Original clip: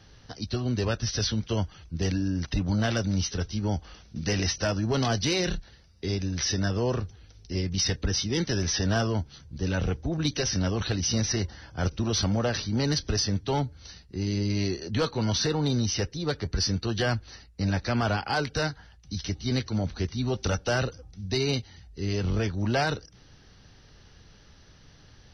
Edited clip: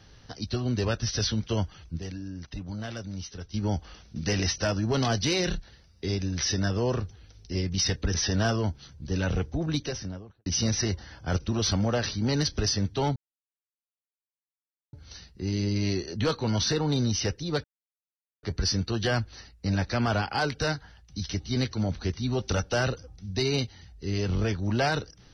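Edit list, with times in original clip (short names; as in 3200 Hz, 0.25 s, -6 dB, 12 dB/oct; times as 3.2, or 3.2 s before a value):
1.99–3.54 gain -10 dB
8.14–8.65 cut
10.07–10.97 studio fade out
13.67 insert silence 1.77 s
16.38 insert silence 0.79 s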